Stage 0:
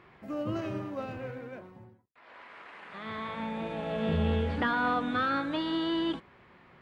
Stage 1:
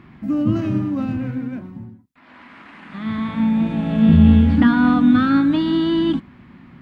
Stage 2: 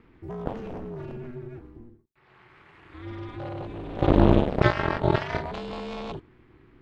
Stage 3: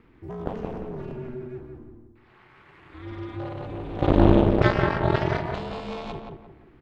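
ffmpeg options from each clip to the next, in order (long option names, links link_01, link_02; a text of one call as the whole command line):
ffmpeg -i in.wav -af "lowshelf=frequency=340:width_type=q:width=3:gain=9,volume=6dB" out.wav
ffmpeg -i in.wav -af "aeval=exprs='val(0)*sin(2*PI*120*n/s)':channel_layout=same,aeval=exprs='0.891*(cos(1*acos(clip(val(0)/0.891,-1,1)))-cos(1*PI/2))+0.2*(cos(7*acos(clip(val(0)/0.891,-1,1)))-cos(7*PI/2))':channel_layout=same,volume=-3.5dB" out.wav
ffmpeg -i in.wav -filter_complex "[0:a]asplit=2[link_01][link_02];[link_02]adelay=174,lowpass=frequency=1600:poles=1,volume=-3.5dB,asplit=2[link_03][link_04];[link_04]adelay=174,lowpass=frequency=1600:poles=1,volume=0.37,asplit=2[link_05][link_06];[link_06]adelay=174,lowpass=frequency=1600:poles=1,volume=0.37,asplit=2[link_07][link_08];[link_08]adelay=174,lowpass=frequency=1600:poles=1,volume=0.37,asplit=2[link_09][link_10];[link_10]adelay=174,lowpass=frequency=1600:poles=1,volume=0.37[link_11];[link_01][link_03][link_05][link_07][link_09][link_11]amix=inputs=6:normalize=0" out.wav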